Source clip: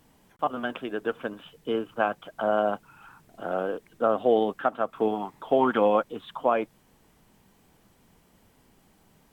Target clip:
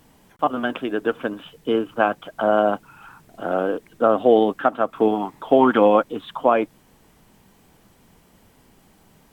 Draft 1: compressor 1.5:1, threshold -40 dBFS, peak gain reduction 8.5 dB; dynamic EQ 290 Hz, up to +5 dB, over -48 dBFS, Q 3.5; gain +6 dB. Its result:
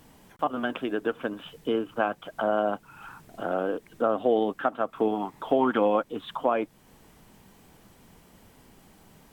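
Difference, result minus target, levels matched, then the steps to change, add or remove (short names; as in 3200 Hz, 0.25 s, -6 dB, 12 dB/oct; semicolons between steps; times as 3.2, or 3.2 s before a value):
compressor: peak gain reduction +8.5 dB
remove: compressor 1.5:1, threshold -40 dBFS, peak gain reduction 8.5 dB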